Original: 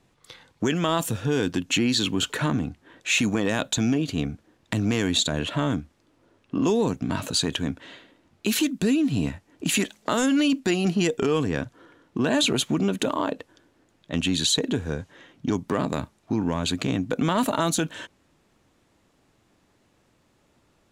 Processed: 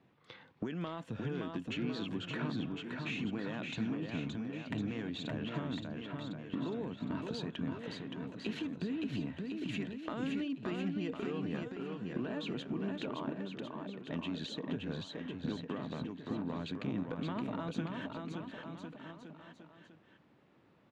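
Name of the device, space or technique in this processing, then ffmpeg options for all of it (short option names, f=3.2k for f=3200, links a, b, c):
AM radio: -af "highpass=160,lowpass=3.8k,acompressor=threshold=-34dB:ratio=6,asoftclip=type=tanh:threshold=-20.5dB,bass=f=250:g=6,treble=f=4k:g=-8,aecho=1:1:570|1054|1466|1816|2114:0.631|0.398|0.251|0.158|0.1,volume=-4.5dB"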